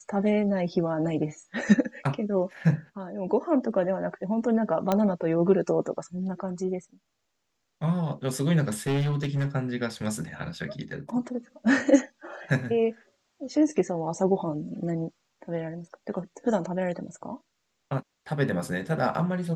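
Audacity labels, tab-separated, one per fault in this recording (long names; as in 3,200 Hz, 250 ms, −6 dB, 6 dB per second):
4.920000	4.920000	click −11 dBFS
8.870000	9.470000	clipping −22.5 dBFS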